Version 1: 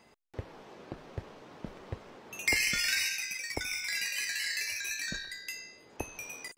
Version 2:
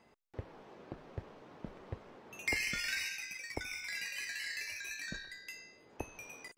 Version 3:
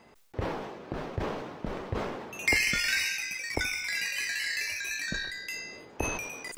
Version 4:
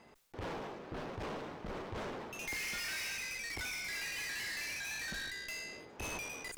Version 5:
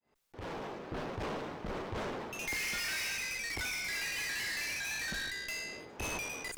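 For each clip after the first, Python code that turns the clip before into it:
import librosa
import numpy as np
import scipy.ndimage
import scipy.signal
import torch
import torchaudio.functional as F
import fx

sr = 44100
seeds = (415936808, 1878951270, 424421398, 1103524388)

y1 = fx.high_shelf(x, sr, hz=3300.0, db=-8.0)
y1 = y1 * 10.0 ** (-3.5 / 20.0)
y2 = fx.sustainer(y1, sr, db_per_s=41.0)
y2 = y2 * 10.0 ** (8.5 / 20.0)
y3 = fx.tube_stage(y2, sr, drive_db=38.0, bias=0.65)
y4 = fx.fade_in_head(y3, sr, length_s=0.76)
y4 = y4 * 10.0 ** (3.5 / 20.0)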